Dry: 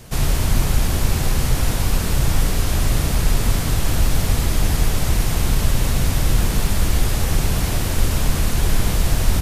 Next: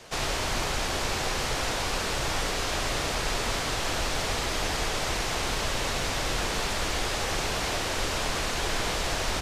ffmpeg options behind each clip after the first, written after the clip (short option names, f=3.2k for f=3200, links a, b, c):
-filter_complex "[0:a]acrossover=split=360 7400:gain=0.141 1 0.126[a][b][c];[a][b][c]amix=inputs=3:normalize=0"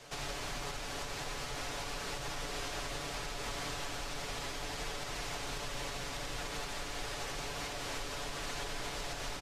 -af "aecho=1:1:7:0.55,alimiter=limit=-23.5dB:level=0:latency=1:release=314,volume=-6dB"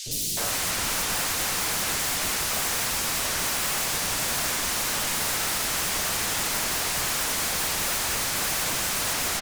-filter_complex "[0:a]aeval=exprs='0.0355*sin(PI/2*6.31*val(0)/0.0355)':c=same,acrossover=split=370|3400[a][b][c];[a]adelay=60[d];[b]adelay=370[e];[d][e][c]amix=inputs=3:normalize=0,volume=6dB"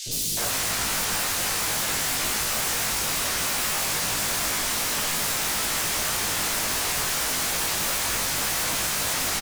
-filter_complex "[0:a]aeval=exprs='0.0841*(abs(mod(val(0)/0.0841+3,4)-2)-1)':c=same,asplit=2[a][b];[b]adelay=19,volume=-3dB[c];[a][c]amix=inputs=2:normalize=0"